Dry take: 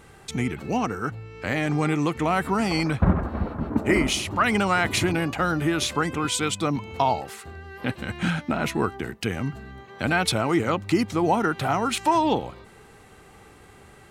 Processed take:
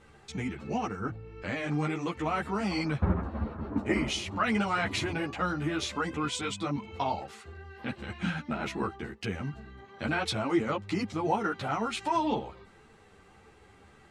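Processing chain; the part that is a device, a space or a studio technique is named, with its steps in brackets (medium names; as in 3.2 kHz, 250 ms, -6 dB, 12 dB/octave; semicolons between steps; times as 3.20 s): 1.00–1.42 s: tilt EQ -2.5 dB/octave; string-machine ensemble chorus (three-phase chorus; low-pass 6.9 kHz 12 dB/octave); trim -4 dB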